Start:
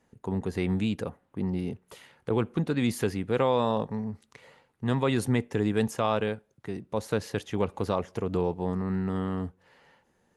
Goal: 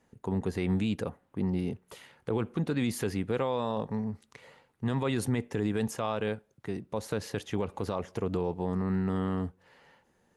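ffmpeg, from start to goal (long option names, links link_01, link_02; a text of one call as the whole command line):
ffmpeg -i in.wav -af "alimiter=limit=-19.5dB:level=0:latency=1:release=65" out.wav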